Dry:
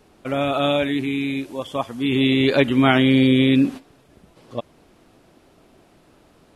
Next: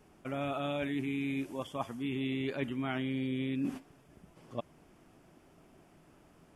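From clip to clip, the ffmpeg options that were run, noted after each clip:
-af "equalizer=f=160:t=o:w=0.33:g=5,equalizer=f=500:t=o:w=0.33:g=-4,equalizer=f=4k:t=o:w=0.33:g=-11,areverse,acompressor=threshold=-24dB:ratio=12,areverse,volume=-7dB"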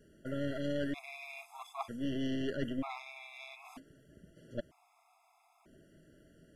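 -af "aeval=exprs='(tanh(35.5*val(0)+0.8)-tanh(0.8))/35.5':c=same,afftfilt=real='re*gt(sin(2*PI*0.53*pts/sr)*(1-2*mod(floor(b*sr/1024/680),2)),0)':imag='im*gt(sin(2*PI*0.53*pts/sr)*(1-2*mod(floor(b*sr/1024/680),2)),0)':win_size=1024:overlap=0.75,volume=5dB"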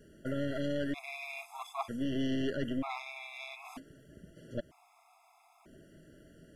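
-af "alimiter=level_in=4.5dB:limit=-24dB:level=0:latency=1:release=155,volume=-4.5dB,volume=4.5dB"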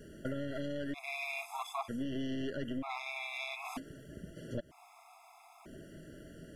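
-af "acompressor=threshold=-42dB:ratio=4,volume=6dB"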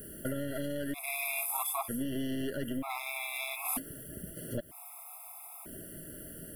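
-af "aexciter=amount=8:drive=9.6:freq=9.4k,volume=2.5dB"

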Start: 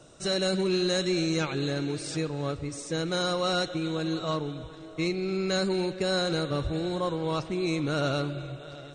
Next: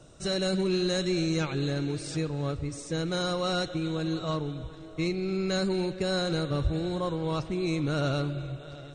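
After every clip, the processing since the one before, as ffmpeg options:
-af "lowshelf=f=140:g=10,volume=-2.5dB"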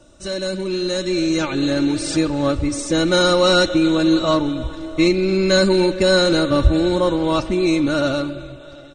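-af "aecho=1:1:3.4:0.67,dynaudnorm=f=340:g=9:m=11dB,volume=2dB"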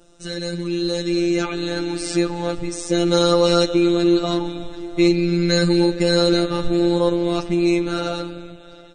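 -af "afftfilt=real='hypot(re,im)*cos(PI*b)':imag='0':win_size=1024:overlap=0.75,volume=1dB"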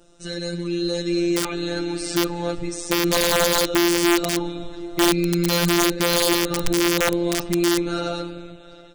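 -af "aeval=exprs='(mod(2.66*val(0)+1,2)-1)/2.66':c=same,aeval=exprs='0.398*(cos(1*acos(clip(val(0)/0.398,-1,1)))-cos(1*PI/2))+0.00447*(cos(5*acos(clip(val(0)/0.398,-1,1)))-cos(5*PI/2))':c=same,volume=-2dB"

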